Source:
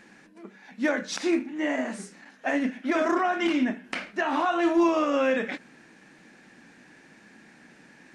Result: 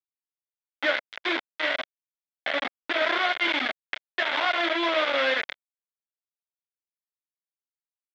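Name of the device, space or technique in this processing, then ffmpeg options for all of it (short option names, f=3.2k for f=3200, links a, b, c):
hand-held game console: -filter_complex "[0:a]asettb=1/sr,asplit=3[a][b][c];[a]atrim=end=1.764[d];[b]atrim=start=1.76:end=3.02,asetpts=PTS-STARTPTS,afade=t=in:d=0.004:c=qsin,afade=t=out:st=1.256:d=0.004:c=qsin,lowpass=f=1.2k:p=1[e];[c]atrim=start=3.016[f];[d][e]acrossfade=d=0.004:c1=hsin:c2=qsin[g];[g][f]acrossfade=d=0.004:c1=qsin:c2=hsin,acrusher=bits=3:mix=0:aa=0.000001,highpass=430,equalizer=f=610:t=q:w=4:g=7,equalizer=f=1.5k:t=q:w=4:g=7,equalizer=f=2.1k:t=q:w=4:g=10,equalizer=f=3.4k:t=q:w=4:g=10,lowpass=f=4.2k:w=0.5412,lowpass=f=4.2k:w=1.3066,anlmdn=0.631,volume=-5dB"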